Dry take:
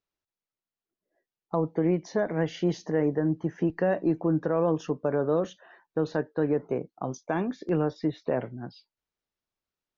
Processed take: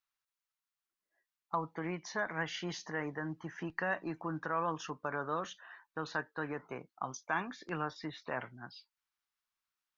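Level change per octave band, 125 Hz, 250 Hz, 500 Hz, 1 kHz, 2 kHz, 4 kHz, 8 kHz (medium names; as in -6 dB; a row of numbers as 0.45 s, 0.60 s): -13.5 dB, -14.5 dB, -14.5 dB, -2.0 dB, +2.0 dB, +0.5 dB, no reading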